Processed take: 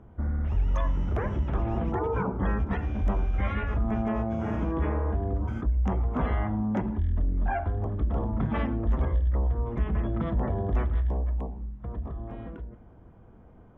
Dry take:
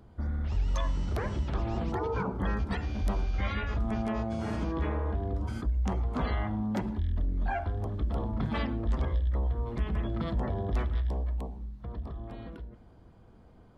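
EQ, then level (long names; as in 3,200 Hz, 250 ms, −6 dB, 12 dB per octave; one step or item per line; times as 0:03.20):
moving average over 10 samples
+3.5 dB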